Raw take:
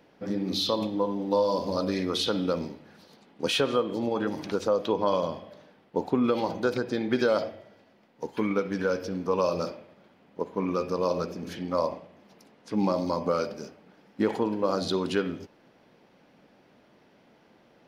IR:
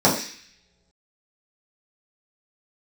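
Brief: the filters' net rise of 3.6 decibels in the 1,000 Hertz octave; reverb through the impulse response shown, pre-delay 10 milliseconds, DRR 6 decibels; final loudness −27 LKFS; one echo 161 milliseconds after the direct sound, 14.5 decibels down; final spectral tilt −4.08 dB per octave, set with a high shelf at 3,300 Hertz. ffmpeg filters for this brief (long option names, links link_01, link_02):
-filter_complex "[0:a]equalizer=frequency=1000:width_type=o:gain=3.5,highshelf=frequency=3300:gain=6,aecho=1:1:161:0.188,asplit=2[link_01][link_02];[1:a]atrim=start_sample=2205,adelay=10[link_03];[link_02][link_03]afir=irnorm=-1:irlink=0,volume=-26.5dB[link_04];[link_01][link_04]amix=inputs=2:normalize=0,volume=-2.5dB"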